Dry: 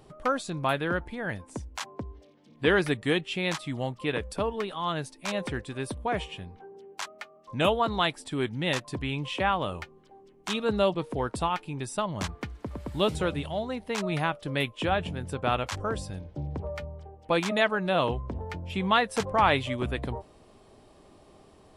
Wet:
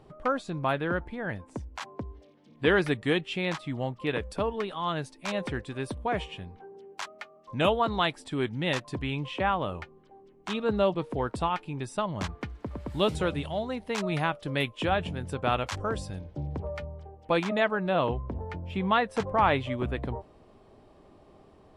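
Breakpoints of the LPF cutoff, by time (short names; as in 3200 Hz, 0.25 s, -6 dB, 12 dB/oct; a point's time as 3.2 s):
LPF 6 dB/oct
2300 Hz
from 1.82 s 4900 Hz
from 3.45 s 2500 Hz
from 4.07 s 4900 Hz
from 9.24 s 2300 Hz
from 10.91 s 3800 Hz
from 12.9 s 8700 Hz
from 16.62 s 4500 Hz
from 17.43 s 2000 Hz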